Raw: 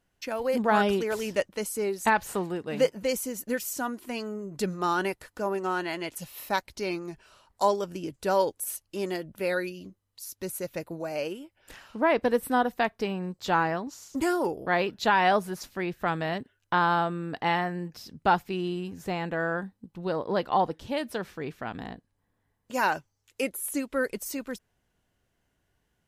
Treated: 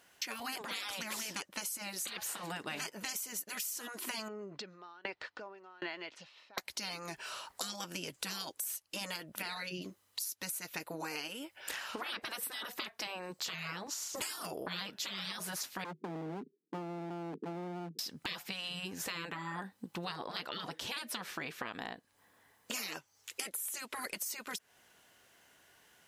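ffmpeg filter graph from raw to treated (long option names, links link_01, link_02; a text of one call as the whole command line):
ffmpeg -i in.wav -filter_complex "[0:a]asettb=1/sr,asplit=3[link_01][link_02][link_03];[link_01]atrim=end=4.284[link_04];[link_02]atrim=start=4.28:end=6.58,asetpts=PTS-STARTPTS,afade=type=in:duration=0.004:curve=qsin,afade=type=out:start_time=2.296:duration=0.004:curve=qsin,lowpass=frequency=4600:width=0.5412,lowpass=frequency=4600:width=1.3066,acompressor=threshold=-37dB:ratio=5:attack=3.2:release=140:knee=1:detection=peak,aeval=exprs='val(0)*pow(10,-32*if(lt(mod(1.3*n/s,1),2*abs(1.3)/1000),1-mod(1.3*n/s,1)/(2*abs(1.3)/1000),(mod(1.3*n/s,1)-2*abs(1.3)/1000)/(1-2*abs(1.3)/1000))/20)':channel_layout=same[link_05];[link_03]atrim=start=6.576[link_06];[link_04][link_05]acrossfade=duration=0.004:curve1=hsin:curve2=qsin[link_07];[link_07][link_06]acrossfade=duration=0.004:curve1=qsin:curve2=hsin,asettb=1/sr,asplit=3[link_08][link_09][link_10];[link_08]atrim=end=9.424[link_11];[link_09]atrim=start=9.42:end=9.82,asetpts=PTS-STARTPTS,afade=type=in:duration=0.004:curve=qsin,afade=type=out:start_time=0.396:duration=0.004:curve=qsin,adynamicsmooth=sensitivity=1.5:basefreq=6200,equalizer=frequency=170:width_type=o:width=1.4:gain=8.5[link_12];[link_10]atrim=start=9.816[link_13];[link_11][link_12]acrossfade=duration=0.004:curve1=hsin:curve2=qsin[link_14];[link_14][link_13]acrossfade=duration=0.004:curve1=qsin:curve2=hsin,asettb=1/sr,asplit=3[link_15][link_16][link_17];[link_15]atrim=end=15.844[link_18];[link_16]atrim=start=15.84:end=17.99,asetpts=PTS-STARTPTS,afade=type=in:duration=0.004:curve=qsin,afade=type=out:start_time=2.146:duration=0.004:curve=qsin,asuperpass=centerf=260:order=20:qfactor=0.9,asoftclip=type=hard:threshold=-35dB[link_19];[link_17]atrim=start=17.986[link_20];[link_18][link_19]acrossfade=duration=0.004:curve1=hsin:curve2=qsin[link_21];[link_21][link_20]acrossfade=duration=0.004:curve1=qsin:curve2=hsin,highpass=frequency=1000:poles=1,afftfilt=real='re*lt(hypot(re,im),0.0398)':imag='im*lt(hypot(re,im),0.0398)':win_size=1024:overlap=0.75,acompressor=threshold=-53dB:ratio=10,volume=16dB" out.wav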